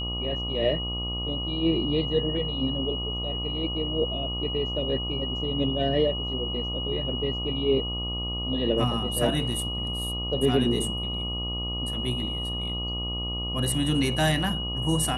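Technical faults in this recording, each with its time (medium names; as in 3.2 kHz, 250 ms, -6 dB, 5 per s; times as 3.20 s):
buzz 60 Hz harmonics 21 -33 dBFS
whine 2.9 kHz -31 dBFS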